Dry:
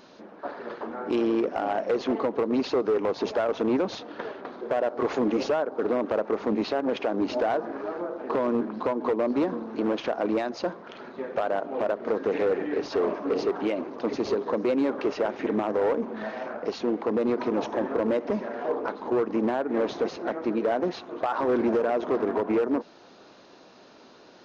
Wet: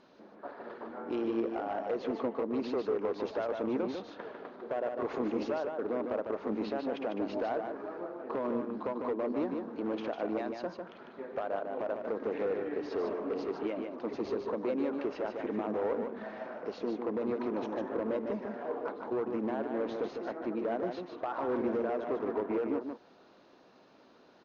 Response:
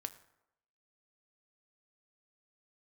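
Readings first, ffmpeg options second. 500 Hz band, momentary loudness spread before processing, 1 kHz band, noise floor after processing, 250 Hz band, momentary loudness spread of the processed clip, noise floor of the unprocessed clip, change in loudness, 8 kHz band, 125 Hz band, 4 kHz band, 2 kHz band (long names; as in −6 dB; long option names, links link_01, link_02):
−7.5 dB, 8 LU, −8.0 dB, −60 dBFS, −7.5 dB, 8 LU, −52 dBFS, −7.5 dB, can't be measured, −7.5 dB, −11.5 dB, −8.5 dB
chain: -af "aemphasis=mode=reproduction:type=50fm,aecho=1:1:150:0.531,volume=-9dB"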